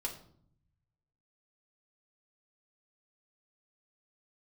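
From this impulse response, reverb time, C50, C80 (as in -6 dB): 0.60 s, 9.5 dB, 13.5 dB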